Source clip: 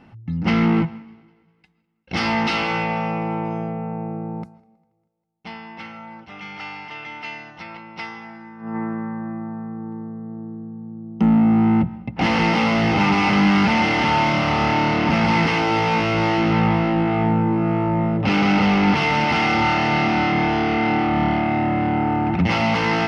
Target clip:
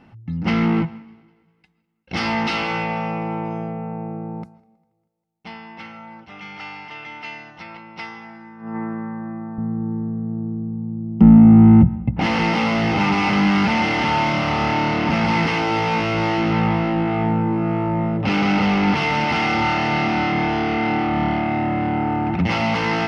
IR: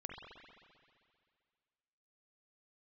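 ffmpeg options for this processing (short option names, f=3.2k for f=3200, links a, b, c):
-filter_complex "[0:a]asettb=1/sr,asplit=3[a][b][c];[a]atrim=end=9.584[d];[b]atrim=start=9.58:end=12.2,asetpts=PTS-STARTPTS,afade=t=in:d=0.004:c=qsin,afade=t=out:st=2.616:d=0.004:c=qsin,aemphasis=mode=reproduction:type=riaa[e];[c]atrim=start=12.196[f];[d][e]acrossfade=d=0.004:c1=hsin:c2=qsin[g];[g][f]acrossfade=d=0.004:c1=qsin:c2=hsin,volume=-1dB"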